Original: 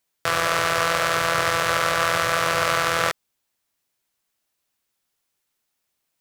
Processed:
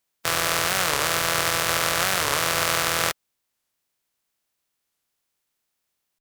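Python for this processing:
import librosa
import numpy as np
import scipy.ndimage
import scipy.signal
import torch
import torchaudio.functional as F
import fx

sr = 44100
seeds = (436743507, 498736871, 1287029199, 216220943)

y = fx.spec_flatten(x, sr, power=0.55)
y = fx.record_warp(y, sr, rpm=45.0, depth_cents=250.0)
y = y * librosa.db_to_amplitude(-1.5)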